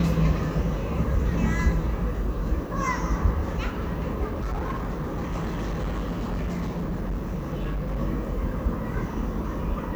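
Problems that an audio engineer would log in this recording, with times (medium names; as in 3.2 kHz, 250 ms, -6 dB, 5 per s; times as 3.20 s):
4.26–8.00 s: clipped -25 dBFS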